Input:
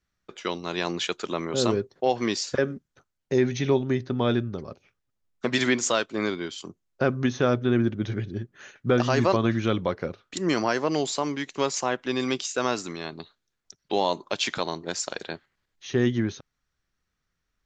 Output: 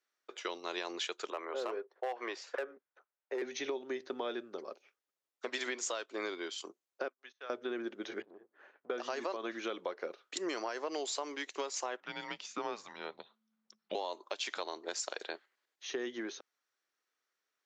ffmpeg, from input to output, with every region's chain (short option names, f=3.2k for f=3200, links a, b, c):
-filter_complex "[0:a]asettb=1/sr,asplit=3[a][b][c];[a]atrim=end=1.304[d];[b]atrim=start=1.3:end=3.42,asetpts=PTS-STARTPTS,afade=t=in:d=0.004:c=qsin,afade=t=out:st=2.116:d=0.004:c=qsin,acrossover=split=430 2500:gain=0.2 1 0.112[e][f][g];[e][f][g]amix=inputs=3:normalize=0,asoftclip=type=hard:threshold=-21dB[h];[c]atrim=start=3.416[i];[d][h]acrossfade=d=0.004:c1=hsin:c2=qsin[j];[j][i]acrossfade=d=0.004:c1=qsin:c2=hsin,asettb=1/sr,asplit=3[k][l][m];[k]atrim=end=7.084[n];[l]atrim=start=7.08:end=7.5,asetpts=PTS-STARTPTS,afade=t=in:d=0.004:c=qsin,afade=t=out:st=0.416:d=0.004:c=qsin,agate=range=-24dB:threshold=-28dB:ratio=16:release=100:detection=peak,highpass=210,lowpass=2.5k,aderivative[o];[m]atrim=start=7.496[p];[n][o]acrossfade=d=0.004:c1=hsin:c2=qsin[q];[q][p]acrossfade=d=0.004:c1=qsin:c2=hsin,asettb=1/sr,asplit=3[r][s][t];[r]atrim=end=8.224[u];[s]atrim=start=8.22:end=8.9,asetpts=PTS-STARTPTS,afade=t=in:d=0.004:c=qsin,afade=t=out:st=0.676:d=0.004:c=qsin,aeval=exprs='if(lt(val(0),0),0.251*val(0),val(0))':c=same,lowpass=1.3k,acompressor=threshold=-40dB:ratio=6:attack=3.2:release=140:knee=1:detection=peak[v];[t]atrim=start=8.896[w];[u][v]acrossfade=d=0.004:c1=hsin:c2=qsin[x];[x][w]acrossfade=d=0.004:c1=qsin:c2=hsin,asettb=1/sr,asplit=3[y][z][aa];[y]atrim=end=12.004[ab];[z]atrim=start=12:end=13.95,asetpts=PTS-STARTPTS,afade=t=in:d=0.004:c=qsin,afade=t=out:st=1.946:d=0.004:c=qsin,aemphasis=mode=reproduction:type=riaa,afreqshift=-220[ac];[aa]atrim=start=13.946[ad];[ab][ac]acrossfade=d=0.004:c1=hsin:c2=qsin[ae];[ae][ad]acrossfade=d=0.004:c1=qsin:c2=hsin,alimiter=limit=-15dB:level=0:latency=1:release=390,highpass=f=360:w=0.5412,highpass=f=360:w=1.3066,acompressor=threshold=-30dB:ratio=6,volume=-3.5dB"